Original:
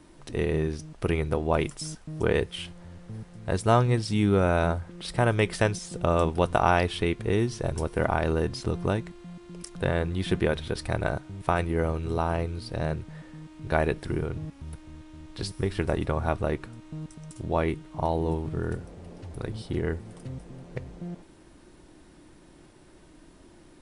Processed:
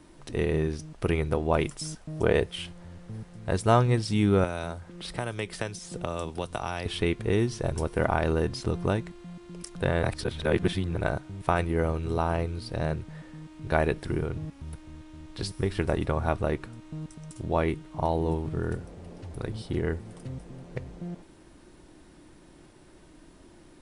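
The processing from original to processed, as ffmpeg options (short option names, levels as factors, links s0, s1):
-filter_complex "[0:a]asettb=1/sr,asplit=3[s0][s1][s2];[s0]atrim=end=1.994[s3];[s1]atrim=start=1.99:end=2.52,asetpts=PTS-STARTPTS,afade=t=in:d=0.004:c=qsin,afade=t=out:st=0.526:d=0.004:c=qsin,equalizer=f=630:w=3:g=6[s4];[s2]atrim=start=2.516[s5];[s3][s4]acrossfade=d=0.004:c1=hsin:c2=qsin[s6];[s6][s5]acrossfade=d=0.004:c1=qsin:c2=hsin,asettb=1/sr,asplit=3[s7][s8][s9];[s7]atrim=end=4.444[s10];[s8]atrim=start=4.44:end=6.86,asetpts=PTS-STARTPTS,afade=t=in:d=0.004:c=qsin,afade=t=out:st=2.416:d=0.004:c=qsin,acrossover=split=160|3100[s11][s12][s13];[s11]acompressor=threshold=0.00891:ratio=4[s14];[s12]acompressor=threshold=0.0282:ratio=4[s15];[s13]acompressor=threshold=0.01:ratio=4[s16];[s14][s15][s16]amix=inputs=3:normalize=0[s17];[s9]atrim=start=6.856[s18];[s10][s17]acrossfade=d=0.004:c1=hsin:c2=qsin[s19];[s19][s18]acrossfade=d=0.004:c1=qsin:c2=hsin,asplit=3[s20][s21][s22];[s20]atrim=end=10.032[s23];[s21]atrim=start=10.028:end=10.962,asetpts=PTS-STARTPTS,areverse[s24];[s22]atrim=start=10.958[s25];[s23][s24]acrossfade=d=0.004:c1=hsin:c2=hsin[s26];[s26][s25]acrossfade=d=0.004:c1=hsin:c2=hsin"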